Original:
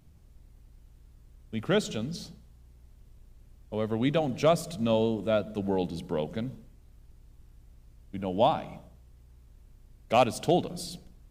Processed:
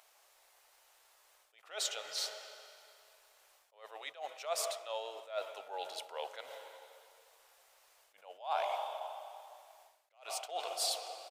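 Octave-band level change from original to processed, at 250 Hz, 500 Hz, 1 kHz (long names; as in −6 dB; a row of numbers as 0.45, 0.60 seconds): below −35 dB, −14.0 dB, −8.5 dB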